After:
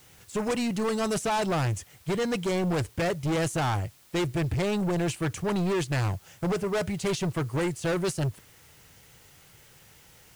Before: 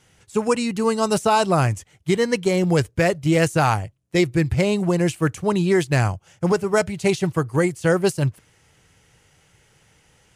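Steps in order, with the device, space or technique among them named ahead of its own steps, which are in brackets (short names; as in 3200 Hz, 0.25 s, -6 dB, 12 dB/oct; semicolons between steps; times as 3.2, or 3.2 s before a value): compact cassette (soft clip -24 dBFS, distortion -7 dB; LPF 11000 Hz; wow and flutter 26 cents; white noise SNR 29 dB)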